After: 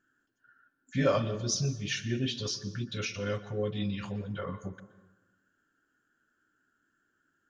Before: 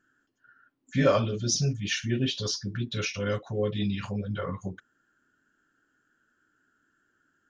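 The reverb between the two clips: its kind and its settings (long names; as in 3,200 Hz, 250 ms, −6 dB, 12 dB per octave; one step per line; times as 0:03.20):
dense smooth reverb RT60 1.2 s, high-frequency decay 0.55×, pre-delay 110 ms, DRR 14.5 dB
level −4 dB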